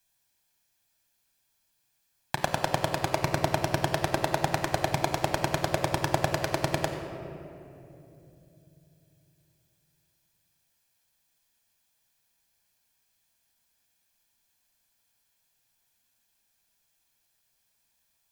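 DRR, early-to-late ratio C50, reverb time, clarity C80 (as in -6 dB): 4.0 dB, 6.0 dB, 2.9 s, 6.5 dB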